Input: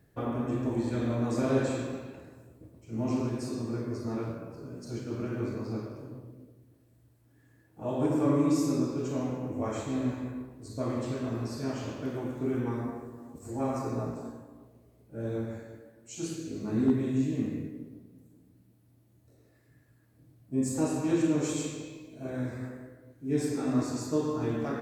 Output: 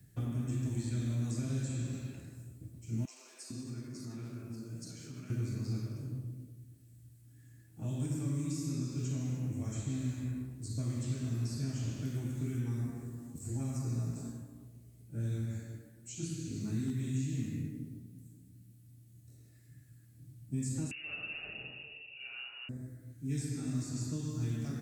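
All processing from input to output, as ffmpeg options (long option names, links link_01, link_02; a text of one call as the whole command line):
ffmpeg -i in.wav -filter_complex "[0:a]asettb=1/sr,asplit=3[link_01][link_02][link_03];[link_01]atrim=end=3.054[link_04];[link_02]atrim=start=3.05:end=5.3,asetpts=PTS-STARTPTS,afade=type=in:duration=0.004:curve=qsin,afade=type=out:start_time=2.246:duration=0.004:curve=qsin,highpass=frequency=280:poles=1,acompressor=threshold=-40dB:ratio=3:attack=3.2:release=140:knee=1:detection=peak,acrossover=split=530[link_05][link_06];[link_05]adelay=450[link_07];[link_07][link_06]amix=inputs=2:normalize=0,atrim=end_sample=99225[link_08];[link_03]atrim=start=5.296[link_09];[link_04][link_08]acrossfade=duration=0.004:curve1=hsin:curve2=qsin[link_10];[link_10][link_09]acrossfade=duration=0.004:curve1=qsin:curve2=hsin,asettb=1/sr,asplit=3[link_11][link_12][link_13];[link_11]atrim=end=20.914[link_14];[link_12]atrim=start=20.91:end=22.69,asetpts=PTS-STARTPTS,afade=type=in:duration=0.004:curve=qsin,afade=type=out:start_time=1.776:duration=0.004:curve=qsin,acontrast=76,lowpass=frequency=2600:width_type=q:width=0.5098,lowpass=frequency=2600:width_type=q:width=0.6013,lowpass=frequency=2600:width_type=q:width=0.9,lowpass=frequency=2600:width_type=q:width=2.563,afreqshift=-3000[link_15];[link_13]atrim=start=22.686[link_16];[link_14][link_15]acrossfade=duration=0.004:curve1=hsin:curve2=qsin[link_17];[link_17][link_16]acrossfade=duration=0.004:curve1=qsin:curve2=hsin,highshelf=frequency=7200:gain=5,acrossover=split=240|1100|4300[link_18][link_19][link_20][link_21];[link_18]acompressor=threshold=-39dB:ratio=4[link_22];[link_19]acompressor=threshold=-41dB:ratio=4[link_23];[link_20]acompressor=threshold=-54dB:ratio=4[link_24];[link_21]acompressor=threshold=-56dB:ratio=4[link_25];[link_22][link_23][link_24][link_25]amix=inputs=4:normalize=0,equalizer=frequency=125:width_type=o:width=1:gain=8,equalizer=frequency=500:width_type=o:width=1:gain=-10,equalizer=frequency=1000:width_type=o:width=1:gain=-11,equalizer=frequency=8000:width_type=o:width=1:gain=7" out.wav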